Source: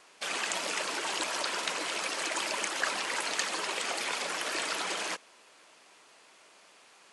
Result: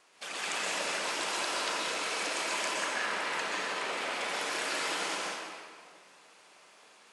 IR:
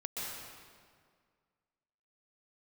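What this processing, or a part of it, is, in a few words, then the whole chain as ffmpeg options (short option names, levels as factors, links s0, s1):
stairwell: -filter_complex "[0:a]asettb=1/sr,asplit=3[s0][s1][s2];[s0]atrim=end=2.714[s3];[s1]atrim=start=2.71:end=4.21,asetpts=PTS-STARTPTS,afade=t=in:d=0.004:c=qsin,afade=t=out:st=1.496:d=0.004:c=qsin,bass=f=250:g=1,treble=f=4000:g=-8[s4];[s2]atrim=start=4.206[s5];[s3][s4]acrossfade=d=0.004:c1=hsin:c2=qsin[s6];[s6][s5]acrossfade=d=0.004:c1=qsin:c2=hsin[s7];[1:a]atrim=start_sample=2205[s8];[s7][s8]afir=irnorm=-1:irlink=0,volume=0.794"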